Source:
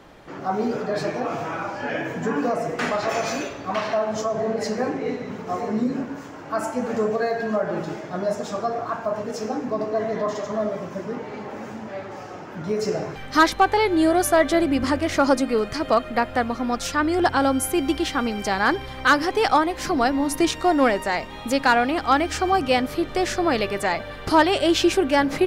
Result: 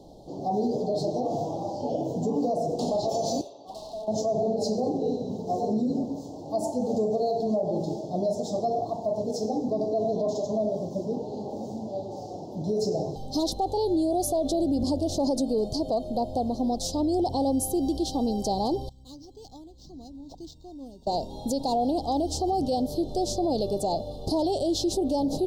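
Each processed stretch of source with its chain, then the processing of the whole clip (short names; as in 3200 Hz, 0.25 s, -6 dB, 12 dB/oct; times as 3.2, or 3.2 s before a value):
3.41–4.08 band-pass 1700 Hz, Q 1.1 + hard clip -33 dBFS
18.89–21.07 passive tone stack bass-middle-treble 6-0-2 + decimation joined by straight lines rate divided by 4×
whole clip: elliptic band-stop 760–4100 Hz, stop band 50 dB; high shelf 8400 Hz -5.5 dB; limiter -19.5 dBFS; gain +1 dB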